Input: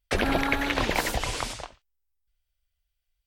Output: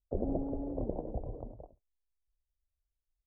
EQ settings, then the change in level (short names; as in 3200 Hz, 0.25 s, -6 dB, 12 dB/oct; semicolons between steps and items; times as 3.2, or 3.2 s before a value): steep low-pass 640 Hz 36 dB/oct; -6.5 dB